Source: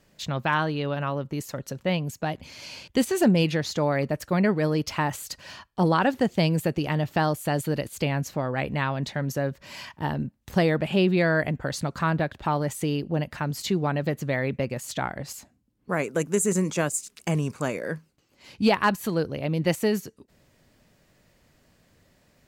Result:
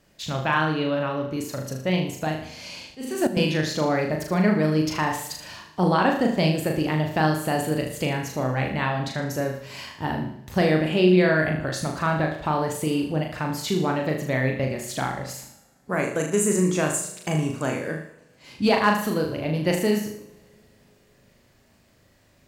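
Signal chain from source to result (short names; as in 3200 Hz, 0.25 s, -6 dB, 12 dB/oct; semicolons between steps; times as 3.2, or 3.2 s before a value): flutter echo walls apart 6.6 m, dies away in 0.52 s; 2.83–3.37 auto swell 0.366 s; two-slope reverb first 0.78 s, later 3.5 s, from -22 dB, DRR 10 dB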